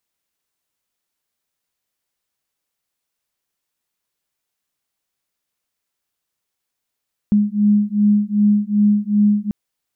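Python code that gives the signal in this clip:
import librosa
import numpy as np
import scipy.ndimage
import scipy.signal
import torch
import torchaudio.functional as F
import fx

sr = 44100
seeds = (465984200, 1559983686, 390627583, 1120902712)

y = fx.two_tone_beats(sr, length_s=2.19, hz=206.0, beat_hz=2.6, level_db=-15.5)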